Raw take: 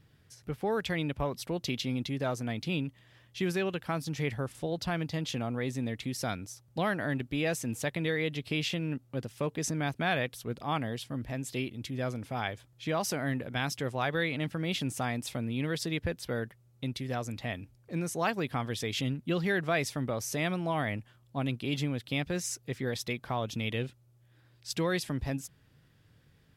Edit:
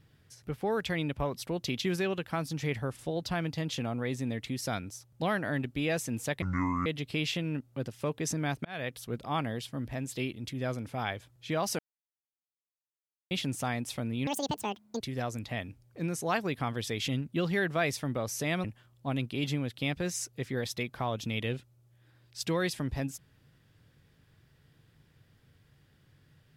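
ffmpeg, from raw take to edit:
-filter_complex "[0:a]asplit=10[a][b][c][d][e][f][g][h][i][j];[a]atrim=end=1.822[k];[b]atrim=start=3.378:end=7.984[l];[c]atrim=start=7.98:end=8.23,asetpts=PTS-STARTPTS,asetrate=25137,aresample=44100,atrim=end_sample=19342,asetpts=PTS-STARTPTS[m];[d]atrim=start=8.226:end=10.02,asetpts=PTS-STARTPTS,afade=t=out:st=1.79:d=0.004:c=hsin[n];[e]atrim=start=10.02:end=13.16,asetpts=PTS-STARTPTS,afade=t=in:d=0.32,afade=t=out:st=3.136:d=0.004:c=hsin[o];[f]atrim=start=13.16:end=14.68,asetpts=PTS-STARTPTS,volume=0[p];[g]atrim=start=14.68:end=15.644,asetpts=PTS-STARTPTS,afade=t=in:d=0.004:c=hsin[q];[h]atrim=start=15.64:end=16.93,asetpts=PTS-STARTPTS,asetrate=77616,aresample=44100,atrim=end_sample=32323,asetpts=PTS-STARTPTS[r];[i]atrim=start=16.926:end=20.572[s];[j]atrim=start=20.938[t];[k][l]acrossfade=d=0.004:c1=hsin:c2=hsin[u];[u][m]acrossfade=d=0.004:c1=hsin:c2=hsin[v];[n][o][p][q]concat=n=4:v=0:a=1[w];[v][w]acrossfade=d=0.004:c1=hsin:c2=hsin[x];[x][r]acrossfade=d=0.004:c1=hsin:c2=hsin[y];[y][s]acrossfade=d=0.004:c1=hsin:c2=hsin[z];[z][t]acrossfade=d=0.004:c1=hsin:c2=hsin"

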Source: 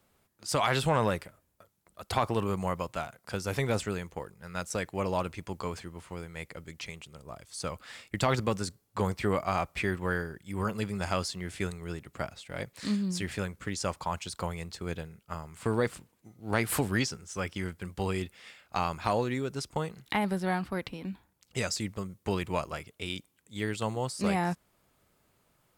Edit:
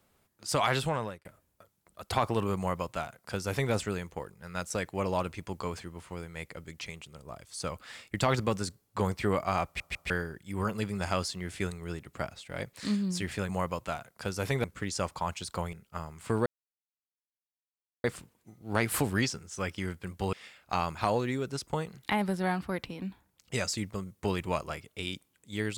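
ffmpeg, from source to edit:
-filter_complex "[0:a]asplit=10[a][b][c][d][e][f][g][h][i][j];[a]atrim=end=1.25,asetpts=PTS-STARTPTS,afade=t=out:st=0.69:d=0.56[k];[b]atrim=start=1.25:end=9.802,asetpts=PTS-STARTPTS,afade=t=in:d=0.004:c=hsin[l];[c]atrim=start=9.648:end=9.802[m];[d]atrim=start=9.648:end=9.802[n];[e]atrim=start=10.098:end=13.492[o];[f]atrim=start=2.568:end=3.722[p];[g]atrim=start=13.488:end=14.582[q];[h]atrim=start=15.088:end=15.82,asetpts=PTS-STARTPTS,afade=t=out:st=0.728:d=0.004:c=hsin,apad=pad_dur=1.58[r];[i]atrim=start=15.82:end=18.112,asetpts=PTS-STARTPTS,afade=t=in:d=0.004:c=hsin[s];[j]atrim=start=18.358[t];[k][l]concat=n=2:v=0:a=1[u];[u][m]acrossfade=d=0.004:c1=hsin:c2=hsin[v];[v][n]acrossfade=d=0.004:c1=hsin:c2=hsin[w];[w][o]acrossfade=d=0.004:c1=hsin:c2=hsin[x];[x][p]acrossfade=d=0.004:c1=hsin:c2=hsin[y];[y][q]acrossfade=d=0.004:c1=hsin:c2=hsin[z];[r][s]concat=n=2:v=0:a=1[aa];[z][aa]acrossfade=d=0.004:c1=hsin:c2=hsin[ab];[ab][t]acrossfade=d=0.004:c1=hsin:c2=hsin"

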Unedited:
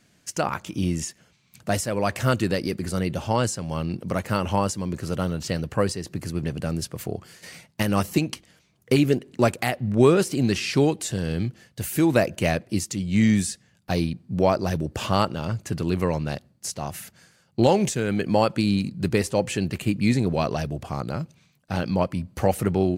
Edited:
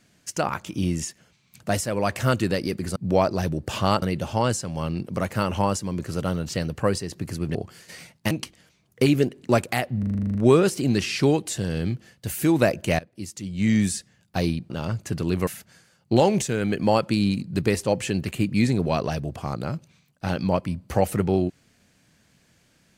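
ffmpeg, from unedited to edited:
-filter_complex "[0:a]asplit=17[a][b][c][d][e][f][g][h][i][j][k][l][m][n][o][p][q];[a]atrim=end=2.962[r];[b]atrim=start=14.238:end=15.302[s];[c]atrim=start=2.958:end=6.492[t];[d]atrim=start=7.088:end=7.852[u];[e]atrim=start=8.208:end=9.932[v];[f]atrim=start=9.888:end=9.932[w];[g]atrim=start=9.888:end=9.932[x];[h]atrim=start=9.888:end=9.932[y];[i]atrim=start=9.888:end=9.932[z];[j]atrim=start=9.888:end=9.932[aa];[k]atrim=start=9.888:end=9.932[ab];[l]atrim=start=9.888:end=9.932[ac];[m]atrim=start=9.888:end=9.932[ad];[n]atrim=start=9.888:end=12.53,asetpts=PTS-STARTPTS,afade=t=out:st=2.638:d=0.004:c=hsin:silence=0.0841395[ae];[o]atrim=start=12.53:end=14.242,asetpts=PTS-STARTPTS,afade=t=in:d=0.9:silence=0.0841395[af];[p]atrim=start=15.298:end=16.072[ag];[q]atrim=start=16.938[ah];[r][s]acrossfade=d=0.004:c1=hsin:c2=hsin[ai];[ai][t]acrossfade=d=0.004:c1=hsin:c2=hsin[aj];[aj][u]acrossfade=d=0.004:c1=hsin:c2=hsin[ak];[ak][v]acrossfade=d=0.004:c1=hsin:c2=hsin[al];[al][w]acrossfade=d=0.004:c1=hsin:c2=hsin[am];[am][x]acrossfade=d=0.004:c1=hsin:c2=hsin[an];[an][y]acrossfade=d=0.004:c1=hsin:c2=hsin[ao];[ao][z]acrossfade=d=0.004:c1=hsin:c2=hsin[ap];[ap][aa]acrossfade=d=0.004:c1=hsin:c2=hsin[aq];[aq][ab]acrossfade=d=0.004:c1=hsin:c2=hsin[ar];[ar][ac]acrossfade=d=0.004:c1=hsin:c2=hsin[as];[as][ad]acrossfade=d=0.004:c1=hsin:c2=hsin[at];[ae][af]concat=n=2:v=0:a=1[au];[at][au]acrossfade=d=0.004:c1=hsin:c2=hsin[av];[av][ag]acrossfade=d=0.004:c1=hsin:c2=hsin[aw];[aw][ah]acrossfade=d=0.004:c1=hsin:c2=hsin"

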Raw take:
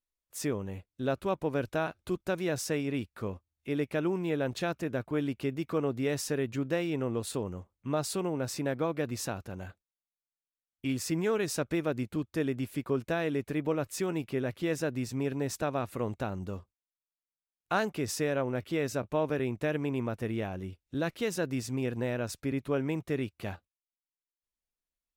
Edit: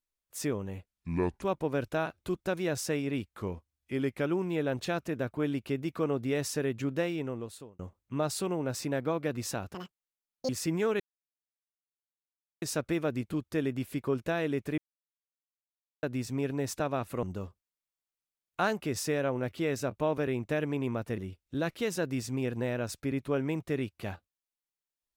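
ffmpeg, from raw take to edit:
-filter_complex "[0:a]asplit=13[a][b][c][d][e][f][g][h][i][j][k][l][m];[a]atrim=end=0.864[n];[b]atrim=start=0.86:end=1.23,asetpts=PTS-STARTPTS,asetrate=29106,aresample=44100[o];[c]atrim=start=1.226:end=3.064[p];[d]atrim=start=3.06:end=4,asetpts=PTS-STARTPTS,asetrate=41013,aresample=44100,atrim=end_sample=44574,asetpts=PTS-STARTPTS[q];[e]atrim=start=3.996:end=7.53,asetpts=PTS-STARTPTS,afade=t=out:st=2.754:d=0.78[r];[f]atrim=start=7.53:end=9.484,asetpts=PTS-STARTPTS,afade=t=in:d=0.004:c=hsin[s];[g]atrim=start=9.48:end=10.93,asetpts=PTS-STARTPTS,asetrate=85554,aresample=44100,atrim=end_sample=32961,asetpts=PTS-STARTPTS[t];[h]atrim=start=10.926:end=11.44,asetpts=PTS-STARTPTS,afade=t=out:st=0.51:d=0.004:c=hsin,apad=pad_dur=1.62[u];[i]atrim=start=11.44:end=13.6,asetpts=PTS-STARTPTS,afade=t=in:d=0.004:c=hsin,afade=t=out:st=2.156:d=0.004:c=hsin[v];[j]atrim=start=13.6:end=14.85,asetpts=PTS-STARTPTS,volume=0[w];[k]atrim=start=14.85:end=16.052,asetpts=PTS-STARTPTS,afade=t=in:d=0.004:c=hsin[x];[l]atrim=start=16.348:end=20.302[y];[m]atrim=start=20.578[z];[n][o]acrossfade=d=0.004:c1=hsin:c2=hsin[aa];[aa][p]acrossfade=d=0.004:c1=hsin:c2=hsin[ab];[ab][q]acrossfade=d=0.004:c1=hsin:c2=hsin[ac];[r][s]concat=n=2:v=0:a=1[ad];[ac][ad]acrossfade=d=0.004:c1=hsin:c2=hsin[ae];[ae][t]acrossfade=d=0.004:c1=hsin:c2=hsin[af];[u][v][w][x]concat=n=4:v=0:a=1[ag];[af][ag]acrossfade=d=0.004:c1=hsin:c2=hsin[ah];[ah][y]acrossfade=d=0.004:c1=hsin:c2=hsin[ai];[ai][z]acrossfade=d=0.004:c1=hsin:c2=hsin"

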